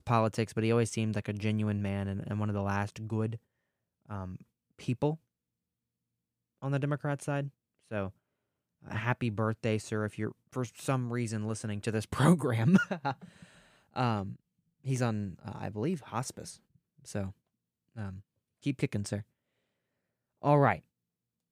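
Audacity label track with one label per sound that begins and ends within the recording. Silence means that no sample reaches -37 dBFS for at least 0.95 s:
6.630000	19.210000	sound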